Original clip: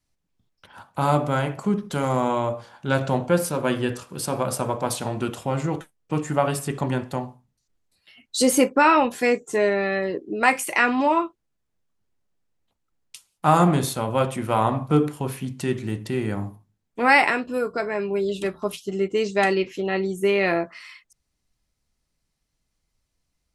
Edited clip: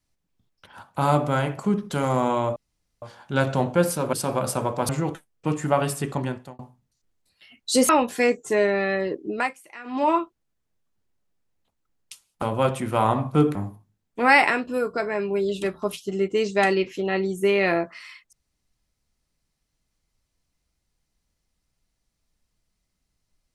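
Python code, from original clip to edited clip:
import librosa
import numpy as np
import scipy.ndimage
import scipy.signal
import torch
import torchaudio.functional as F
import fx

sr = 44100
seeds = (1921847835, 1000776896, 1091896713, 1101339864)

y = fx.edit(x, sr, fx.insert_room_tone(at_s=2.56, length_s=0.46),
    fx.cut(start_s=3.67, length_s=0.5),
    fx.cut(start_s=4.93, length_s=0.62),
    fx.fade_out_span(start_s=6.58, length_s=0.67, curve='qsin'),
    fx.cut(start_s=8.55, length_s=0.37),
    fx.fade_down_up(start_s=10.32, length_s=0.8, db=-21.5, fade_s=0.25),
    fx.cut(start_s=13.45, length_s=0.53),
    fx.cut(start_s=15.11, length_s=1.24), tone=tone)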